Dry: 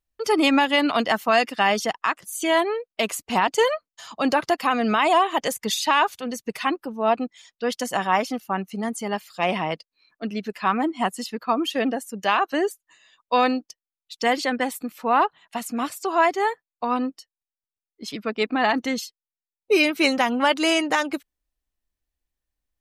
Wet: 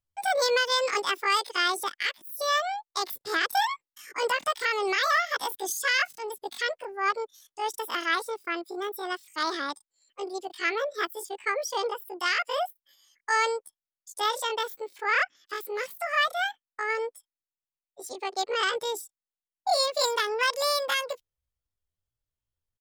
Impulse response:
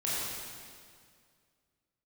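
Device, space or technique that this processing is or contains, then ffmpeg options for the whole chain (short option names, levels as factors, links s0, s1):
chipmunk voice: -af "asetrate=78577,aresample=44100,atempo=0.561231,volume=0.531"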